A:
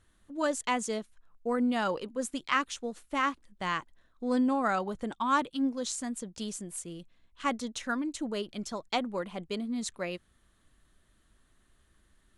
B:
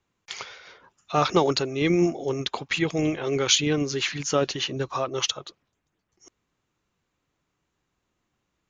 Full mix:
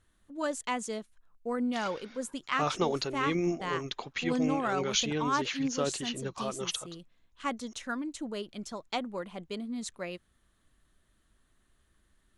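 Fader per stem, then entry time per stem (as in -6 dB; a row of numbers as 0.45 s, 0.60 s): -3.0 dB, -8.5 dB; 0.00 s, 1.45 s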